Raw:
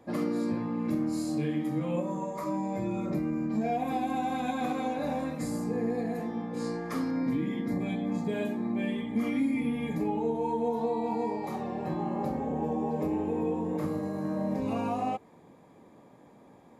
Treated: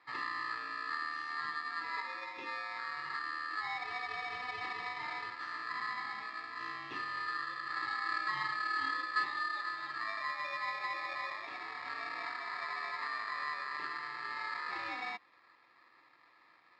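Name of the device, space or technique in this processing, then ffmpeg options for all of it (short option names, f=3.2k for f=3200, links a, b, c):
ring modulator pedal into a guitar cabinet: -filter_complex "[0:a]asettb=1/sr,asplit=3[a][b][c];[a]atrim=end=7.764[d];[b]atrim=start=7.76:end=9.25,asetpts=PTS-STARTPTS,afade=t=in:d=0.004:c=qsin,afade=t=out:st=1.486:d=0.004:c=qsin,aecho=1:1:4.4:0.94,atrim=end_sample=65709[e];[c]atrim=start=9.246[f];[d][e]acrossfade=d=0.004:c1=hsin:c2=qsin[g];[g][f]acrossfade=d=0.004:c1=qsin:c2=hsin,aeval=exprs='val(0)*sgn(sin(2*PI*1500*n/s))':c=same,highpass=100,equalizer=f=320:t=q:w=4:g=6,equalizer=f=610:t=q:w=4:g=-6,equalizer=f=1k:t=q:w=4:g=3,lowpass=f=4.1k:w=0.5412,lowpass=f=4.1k:w=1.3066,volume=-9dB"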